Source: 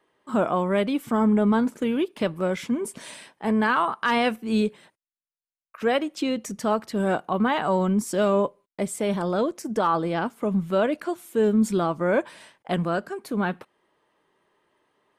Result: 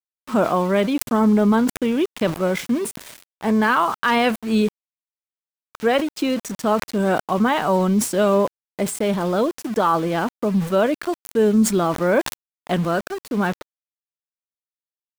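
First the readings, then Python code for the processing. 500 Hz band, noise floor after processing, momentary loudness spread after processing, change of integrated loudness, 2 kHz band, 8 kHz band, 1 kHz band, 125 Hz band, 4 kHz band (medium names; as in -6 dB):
+4.0 dB, under -85 dBFS, 8 LU, +4.0 dB, +4.0 dB, +8.5 dB, +4.0 dB, +4.5 dB, +5.0 dB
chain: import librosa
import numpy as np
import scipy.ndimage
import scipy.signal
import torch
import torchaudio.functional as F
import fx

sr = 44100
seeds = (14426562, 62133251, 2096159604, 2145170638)

y = np.where(np.abs(x) >= 10.0 ** (-36.0 / 20.0), x, 0.0)
y = fx.sustainer(y, sr, db_per_s=130.0)
y = F.gain(torch.from_numpy(y), 4.0).numpy()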